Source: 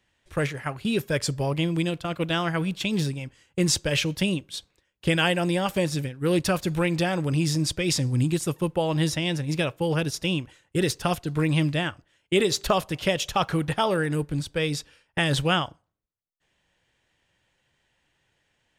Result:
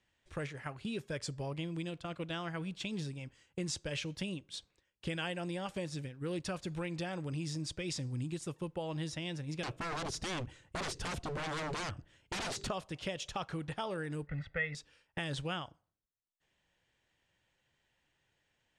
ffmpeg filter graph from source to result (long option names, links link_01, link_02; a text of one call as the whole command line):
ffmpeg -i in.wav -filter_complex "[0:a]asettb=1/sr,asplit=3[link_01][link_02][link_03];[link_01]atrim=end=9.634[link_04];[link_02]atrim=start=9.63:end=12.69,asetpts=PTS-STARTPTS,afade=type=in:duration=0.004:curve=qsin,afade=type=out:start_time=3.056:duration=0.004:curve=qsin,lowshelf=frequency=270:gain=11.5,acontrast=55,aeval=exprs='0.1*(abs(mod(val(0)/0.1+3,4)-2)-1)':channel_layout=same[link_05];[link_03]atrim=start=12.686[link_06];[link_04][link_05]acrossfade=duration=0.004:curve1=hsin:curve2=qsin[link_07];[link_07][link_06]acrossfade=duration=0.004:curve1=qsin:curve2=hsin,asettb=1/sr,asplit=3[link_08][link_09][link_10];[link_08]atrim=end=14.274[link_11];[link_09]atrim=start=14.27:end=14.75,asetpts=PTS-STARTPTS,afade=type=in:duration=0.004:curve=qsin,afade=type=out:start_time=0.476:duration=0.004:curve=qsin,lowpass=frequency=1900:width_type=q:width=8.2,aecho=1:1:1.5:0.83,atrim=end_sample=21168[link_12];[link_10]atrim=start=14.746[link_13];[link_11][link_12]acrossfade=duration=0.004:curve1=hsin:curve2=qsin[link_14];[link_14][link_13]acrossfade=duration=0.004:curve1=qsin:curve2=hsin,lowpass=frequency=9200:width=0.5412,lowpass=frequency=9200:width=1.3066,acompressor=threshold=-34dB:ratio=2,volume=-7dB" out.wav